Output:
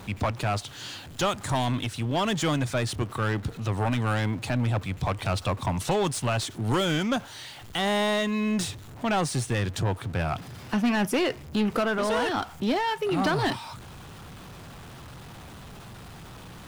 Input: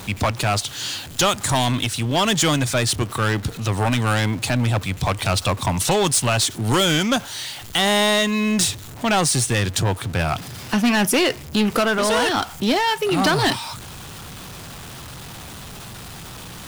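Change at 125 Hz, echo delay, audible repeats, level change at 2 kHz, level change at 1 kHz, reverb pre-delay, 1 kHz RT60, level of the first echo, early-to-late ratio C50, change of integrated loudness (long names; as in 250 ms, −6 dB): −5.5 dB, no echo audible, no echo audible, −8.0 dB, −6.5 dB, no reverb audible, no reverb audible, no echo audible, no reverb audible, −7.5 dB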